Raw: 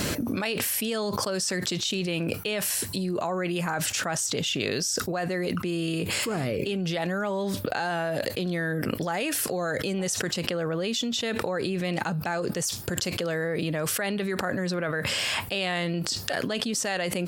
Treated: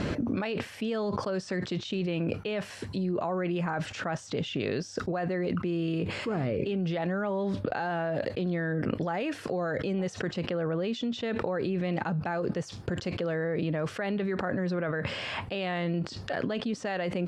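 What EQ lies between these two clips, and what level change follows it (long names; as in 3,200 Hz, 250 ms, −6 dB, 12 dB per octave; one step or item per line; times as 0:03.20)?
head-to-tape spacing loss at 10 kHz 29 dB
0.0 dB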